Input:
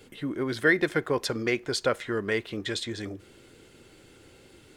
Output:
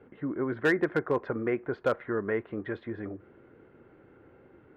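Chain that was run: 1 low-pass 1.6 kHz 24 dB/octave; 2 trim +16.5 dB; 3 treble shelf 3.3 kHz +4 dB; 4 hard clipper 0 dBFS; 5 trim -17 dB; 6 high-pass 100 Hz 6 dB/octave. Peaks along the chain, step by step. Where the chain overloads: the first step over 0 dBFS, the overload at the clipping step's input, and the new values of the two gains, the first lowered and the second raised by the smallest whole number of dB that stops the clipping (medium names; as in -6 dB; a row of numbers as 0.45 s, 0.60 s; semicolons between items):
-11.0 dBFS, +5.5 dBFS, +6.0 dBFS, 0.0 dBFS, -17.0 dBFS, -15.5 dBFS; step 2, 6.0 dB; step 2 +10.5 dB, step 5 -11 dB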